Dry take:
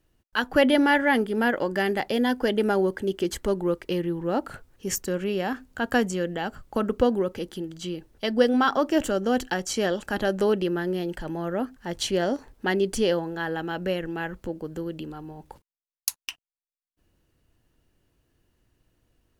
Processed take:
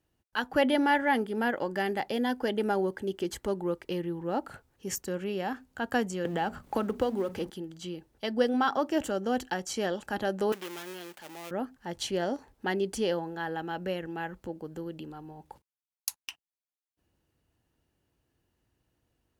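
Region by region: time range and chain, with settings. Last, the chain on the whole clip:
6.25–7.50 s: companding laws mixed up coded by mu + hum notches 60/120/180/240 Hz + three bands compressed up and down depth 70%
10.52–11.51 s: dead-time distortion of 0.28 ms + high-pass 980 Hz 6 dB/octave + treble shelf 12 kHz +7 dB
whole clip: high-pass 51 Hz; peaking EQ 830 Hz +5 dB 0.3 oct; trim -6 dB

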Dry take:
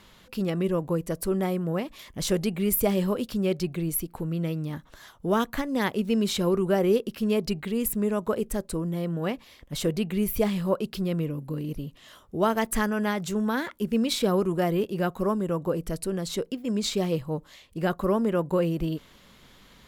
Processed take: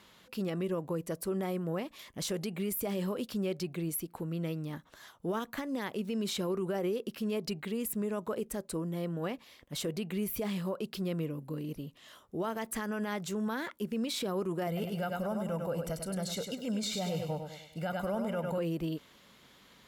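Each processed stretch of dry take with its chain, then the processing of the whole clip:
14.67–18.58 s: comb 1.4 ms, depth 73% + feedback delay 100 ms, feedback 43%, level -7.5 dB
whole clip: high-pass 170 Hz 6 dB/octave; peak limiter -22 dBFS; trim -4 dB

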